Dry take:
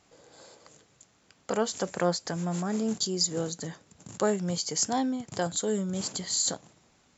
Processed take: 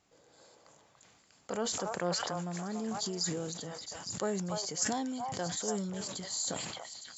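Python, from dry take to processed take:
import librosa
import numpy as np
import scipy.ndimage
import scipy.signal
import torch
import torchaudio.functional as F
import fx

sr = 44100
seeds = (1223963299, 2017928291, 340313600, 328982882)

y = fx.high_shelf(x, sr, hz=6900.0, db=10.5, at=(4.81, 5.26), fade=0.02)
y = fx.echo_stepped(y, sr, ms=287, hz=900.0, octaves=1.4, feedback_pct=70, wet_db=0)
y = fx.sustainer(y, sr, db_per_s=31.0)
y = F.gain(torch.from_numpy(y), -8.0).numpy()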